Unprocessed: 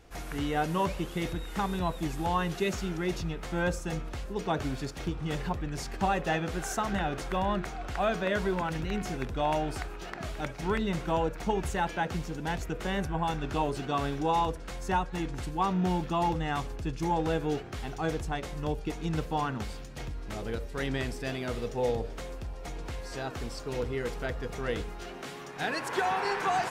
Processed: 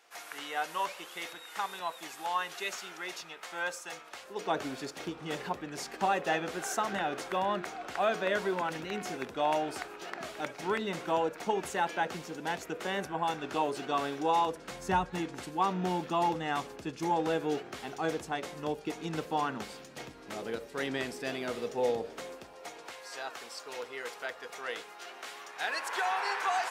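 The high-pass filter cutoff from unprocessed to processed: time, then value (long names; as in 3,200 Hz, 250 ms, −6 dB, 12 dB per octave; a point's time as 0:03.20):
0:04.09 830 Hz
0:04.57 300 Hz
0:14.46 300 Hz
0:15.03 78 Hz
0:15.26 250 Hz
0:22.20 250 Hz
0:23.04 720 Hz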